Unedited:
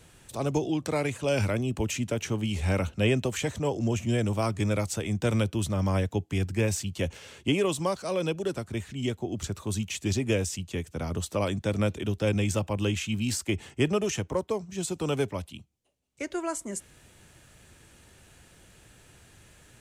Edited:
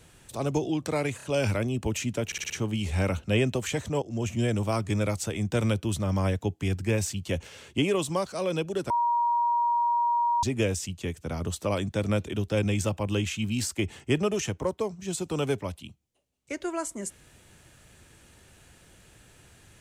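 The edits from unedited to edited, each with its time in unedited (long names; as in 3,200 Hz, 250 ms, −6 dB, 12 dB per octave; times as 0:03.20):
0:01.17: stutter 0.03 s, 3 plays
0:02.20: stutter 0.06 s, 5 plays
0:03.72–0:03.99: fade in, from −16.5 dB
0:08.60–0:10.13: beep over 949 Hz −21.5 dBFS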